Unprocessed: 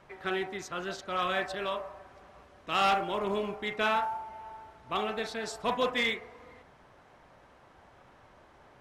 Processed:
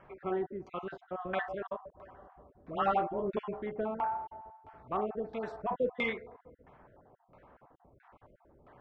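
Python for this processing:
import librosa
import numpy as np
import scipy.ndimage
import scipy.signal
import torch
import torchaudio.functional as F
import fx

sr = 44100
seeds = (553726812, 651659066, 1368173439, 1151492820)

y = fx.spec_dropout(x, sr, seeds[0], share_pct=32)
y = fx.dispersion(y, sr, late='highs', ms=79.0, hz=900.0, at=(1.9, 3.37))
y = fx.filter_lfo_lowpass(y, sr, shape='saw_down', hz=1.5, low_hz=370.0, high_hz=2100.0, q=0.88)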